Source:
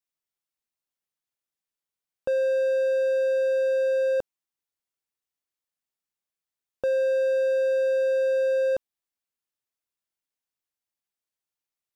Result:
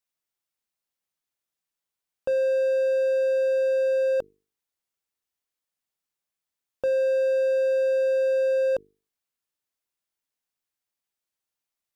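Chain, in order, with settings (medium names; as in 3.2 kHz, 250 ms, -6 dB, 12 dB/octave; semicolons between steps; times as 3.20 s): in parallel at -10 dB: saturation -34.5 dBFS, distortion -8 dB; on the sum: hum notches 50/100/150/200/250/300/350/400/450 Hz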